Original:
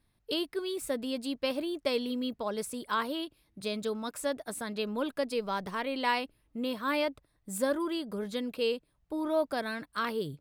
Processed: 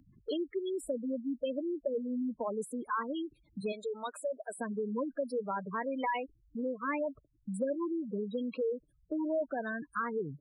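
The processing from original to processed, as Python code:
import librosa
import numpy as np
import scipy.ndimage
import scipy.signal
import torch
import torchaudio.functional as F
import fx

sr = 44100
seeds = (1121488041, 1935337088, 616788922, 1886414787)

y = fx.highpass(x, sr, hz=510.0, slope=12, at=(3.72, 4.57))
y = fx.spec_gate(y, sr, threshold_db=-10, keep='strong')
y = fx.comb(y, sr, ms=2.4, depth=0.53, at=(6.01, 7.0), fade=0.02)
y = fx.band_squash(y, sr, depth_pct=70)
y = y * librosa.db_to_amplitude(-1.5)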